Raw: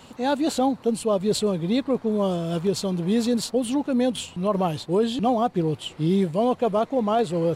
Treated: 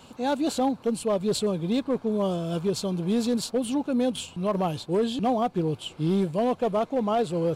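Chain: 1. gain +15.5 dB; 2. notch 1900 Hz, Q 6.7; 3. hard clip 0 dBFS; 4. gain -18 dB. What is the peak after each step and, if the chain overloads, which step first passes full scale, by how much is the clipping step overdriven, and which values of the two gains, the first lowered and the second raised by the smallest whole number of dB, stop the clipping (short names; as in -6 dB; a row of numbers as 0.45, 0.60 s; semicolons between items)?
+4.0, +3.5, 0.0, -18.0 dBFS; step 1, 3.5 dB; step 1 +11.5 dB, step 4 -14 dB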